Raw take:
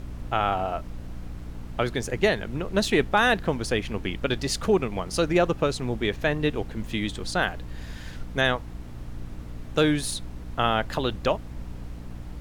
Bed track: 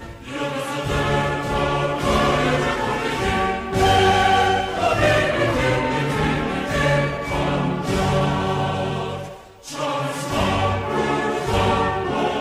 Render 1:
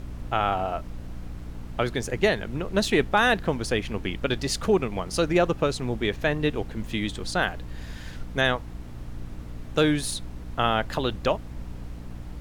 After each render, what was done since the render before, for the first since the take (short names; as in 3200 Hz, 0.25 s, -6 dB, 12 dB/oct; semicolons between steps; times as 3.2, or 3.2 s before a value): nothing audible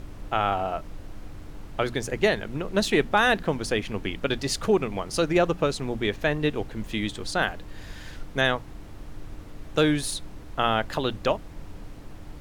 notches 60/120/180/240 Hz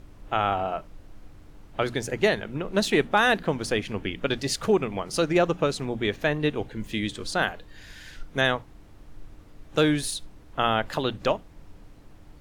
noise print and reduce 8 dB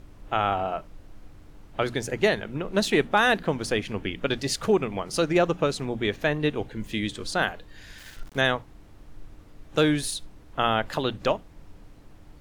7.98–8.38 sample gate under -43.5 dBFS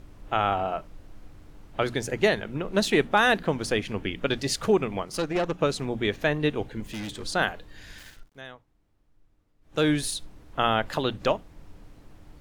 5.05–5.61 tube stage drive 20 dB, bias 0.75; 6.8–7.23 hard clip -32 dBFS; 7.99–9.9 dip -20 dB, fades 0.29 s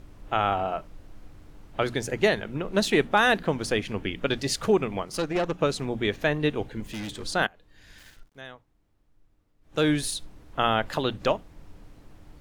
7.47–8.44 fade in, from -22 dB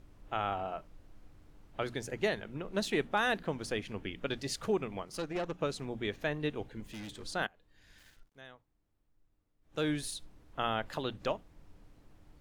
gain -9.5 dB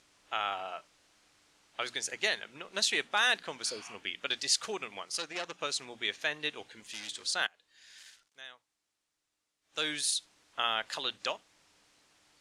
3.69–3.92 spectral repair 670–5200 Hz both; weighting filter ITU-R 468